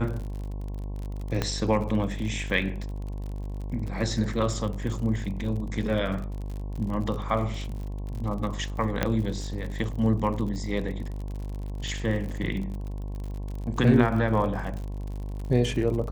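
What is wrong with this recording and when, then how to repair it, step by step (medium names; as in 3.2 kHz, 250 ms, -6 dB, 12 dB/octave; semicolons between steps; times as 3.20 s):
buzz 50 Hz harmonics 22 -33 dBFS
crackle 53 per s -34 dBFS
1.42 s: pop -12 dBFS
9.03 s: pop -9 dBFS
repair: de-click; de-hum 50 Hz, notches 22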